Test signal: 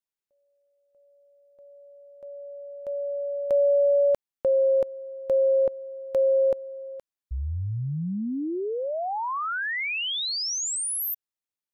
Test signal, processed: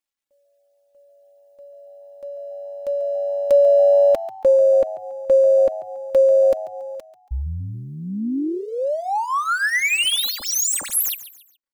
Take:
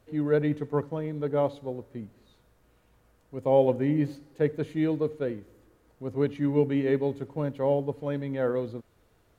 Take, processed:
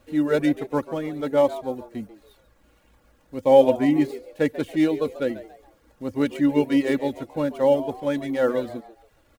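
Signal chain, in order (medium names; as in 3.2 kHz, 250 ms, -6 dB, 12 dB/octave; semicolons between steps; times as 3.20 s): median filter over 9 samples; reverb removal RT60 0.57 s; treble shelf 2.6 kHz +11.5 dB; comb 3.6 ms, depth 57%; frequency-shifting echo 140 ms, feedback 35%, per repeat +100 Hz, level -15.5 dB; trim +4 dB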